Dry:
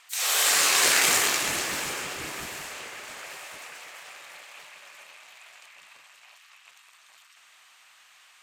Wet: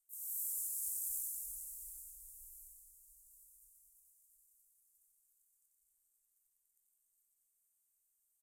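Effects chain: inverse Chebyshev band-stop 160–2700 Hz, stop band 70 dB; resonant high shelf 2.4 kHz -8.5 dB, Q 1.5; on a send: reverse bouncing-ball echo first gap 90 ms, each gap 1.6×, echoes 5; on the sum: trim -2 dB

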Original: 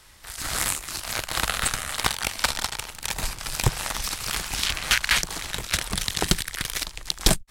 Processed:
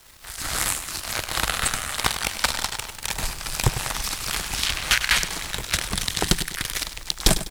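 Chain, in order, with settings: feedback delay 100 ms, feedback 39%, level -12 dB; word length cut 8-bit, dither none; trim +1 dB

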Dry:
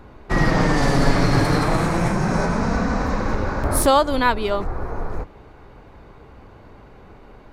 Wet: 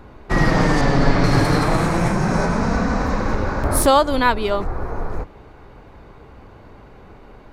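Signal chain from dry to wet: 0.81–1.24 s: distance through air 96 m; trim +1.5 dB

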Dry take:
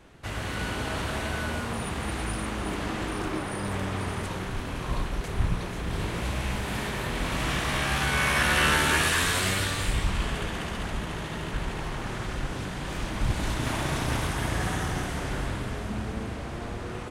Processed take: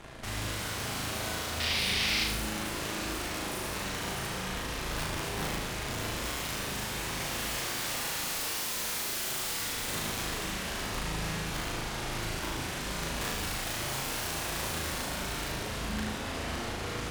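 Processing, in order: integer overflow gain 23 dB; peak limiter -32.5 dBFS, peak gain reduction 9.5 dB; Chebyshev shaper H 8 -7 dB, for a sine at -32 dBFS; 1.60–2.24 s: high-order bell 3.3 kHz +12.5 dB; on a send: flutter echo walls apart 6.4 m, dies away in 0.73 s

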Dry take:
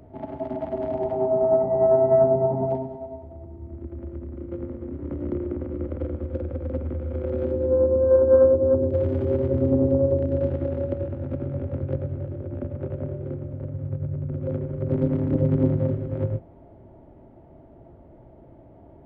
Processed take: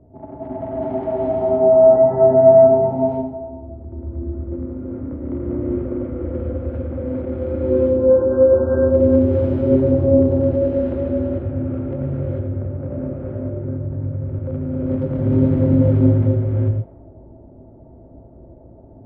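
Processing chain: level-controlled noise filter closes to 620 Hz, open at -18.5 dBFS; gated-style reverb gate 470 ms rising, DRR -6 dB; trim -1.5 dB

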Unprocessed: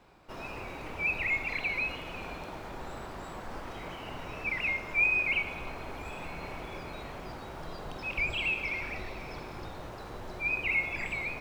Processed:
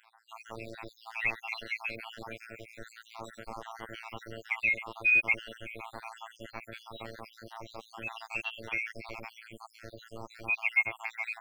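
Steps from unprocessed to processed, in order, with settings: random holes in the spectrogram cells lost 73%; bass shelf 310 Hz -7 dB; robot voice 113 Hz; trim +6 dB

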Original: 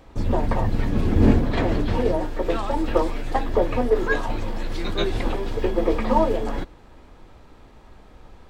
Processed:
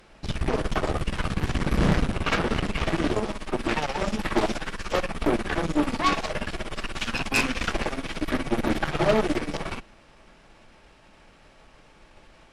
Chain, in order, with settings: tilt shelf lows -7.5 dB, about 1.4 kHz; wide varispeed 0.678×; Chebyshev shaper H 8 -14 dB, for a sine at -9.5 dBFS

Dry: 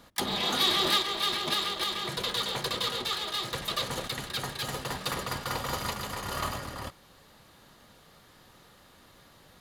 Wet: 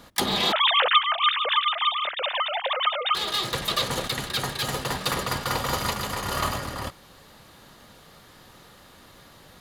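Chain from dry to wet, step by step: 0.52–3.15 s: formants replaced by sine waves; trim +6 dB

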